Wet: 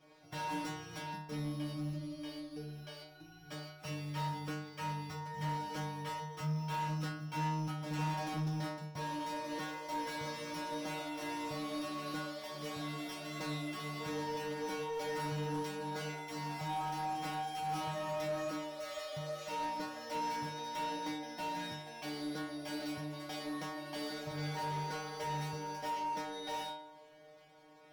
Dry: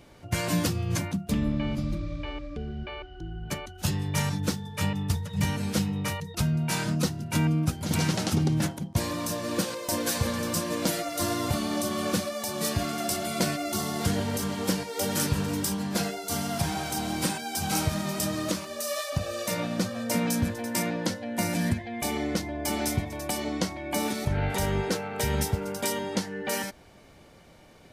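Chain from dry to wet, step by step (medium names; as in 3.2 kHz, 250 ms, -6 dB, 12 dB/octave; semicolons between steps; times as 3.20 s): sorted samples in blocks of 8 samples; inharmonic resonator 150 Hz, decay 0.75 s, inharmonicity 0.002; overdrive pedal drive 21 dB, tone 2 kHz, clips at -26 dBFS; trim -1 dB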